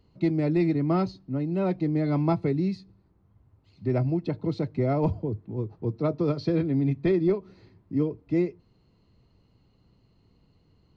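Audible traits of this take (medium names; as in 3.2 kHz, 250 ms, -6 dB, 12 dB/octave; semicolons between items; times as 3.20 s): noise floor -65 dBFS; spectral tilt -6.5 dB/octave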